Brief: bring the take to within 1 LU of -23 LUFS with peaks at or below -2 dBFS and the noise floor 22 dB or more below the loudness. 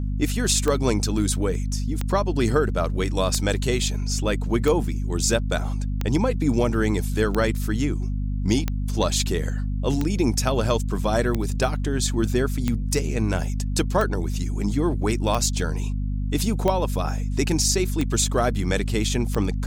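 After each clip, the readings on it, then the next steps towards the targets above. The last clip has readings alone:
clicks 15; hum 50 Hz; harmonics up to 250 Hz; hum level -23 dBFS; loudness -23.5 LUFS; peak -7.5 dBFS; loudness target -23.0 LUFS
-> de-click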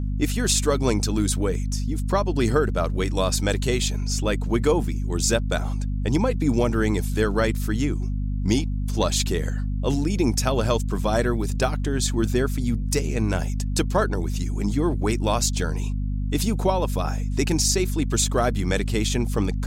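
clicks 0; hum 50 Hz; harmonics up to 250 Hz; hum level -23 dBFS
-> notches 50/100/150/200/250 Hz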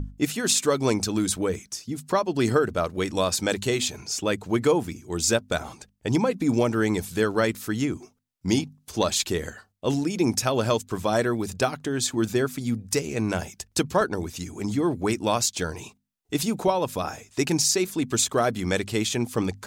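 hum none; loudness -25.5 LUFS; peak -8.5 dBFS; loudness target -23.0 LUFS
-> gain +2.5 dB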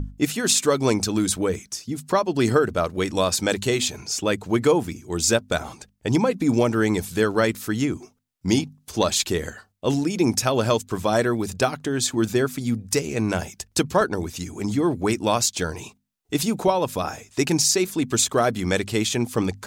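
loudness -23.0 LUFS; peak -6.0 dBFS; noise floor -64 dBFS

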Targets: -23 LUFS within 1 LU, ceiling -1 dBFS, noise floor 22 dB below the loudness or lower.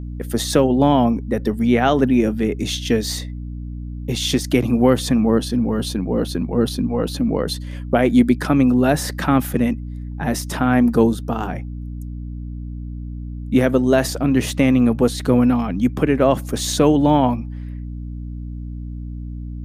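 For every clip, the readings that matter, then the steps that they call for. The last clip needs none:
hum 60 Hz; harmonics up to 300 Hz; hum level -27 dBFS; loudness -18.5 LUFS; peak -2.5 dBFS; loudness target -23.0 LUFS
-> de-hum 60 Hz, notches 5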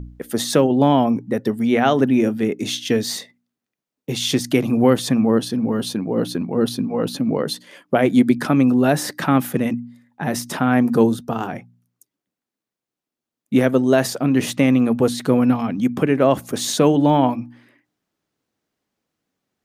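hum none; loudness -19.0 LUFS; peak -2.5 dBFS; loudness target -23.0 LUFS
-> gain -4 dB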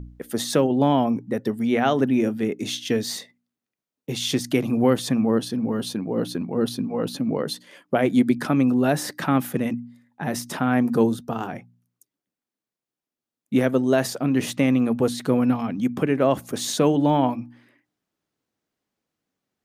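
loudness -23.0 LUFS; peak -6.5 dBFS; noise floor -90 dBFS

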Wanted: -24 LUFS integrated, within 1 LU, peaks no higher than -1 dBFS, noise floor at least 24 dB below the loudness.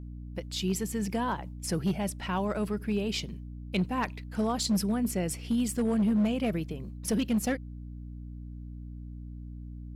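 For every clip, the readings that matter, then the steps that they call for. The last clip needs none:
clipped 1.4%; flat tops at -21.5 dBFS; hum 60 Hz; harmonics up to 300 Hz; hum level -39 dBFS; loudness -30.5 LUFS; peak -21.5 dBFS; loudness target -24.0 LUFS
-> clip repair -21.5 dBFS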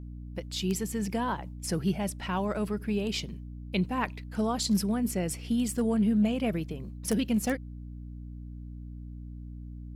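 clipped 0.0%; hum 60 Hz; harmonics up to 300 Hz; hum level -38 dBFS
-> de-hum 60 Hz, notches 5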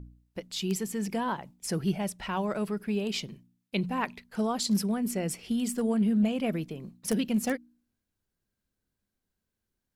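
hum none; loudness -30.5 LUFS; peak -12.5 dBFS; loudness target -24.0 LUFS
-> gain +6.5 dB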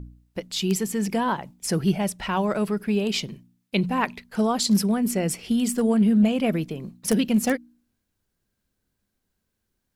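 loudness -24.0 LUFS; peak -6.0 dBFS; noise floor -78 dBFS

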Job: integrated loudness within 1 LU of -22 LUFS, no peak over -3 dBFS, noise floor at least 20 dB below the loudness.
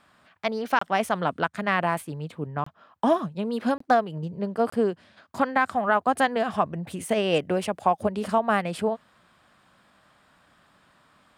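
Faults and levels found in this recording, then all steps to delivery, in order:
dropouts 4; longest dropout 24 ms; loudness -26.0 LUFS; peak -9.0 dBFS; loudness target -22.0 LUFS
-> interpolate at 0.79/2.64/3.78/4.7, 24 ms; gain +4 dB

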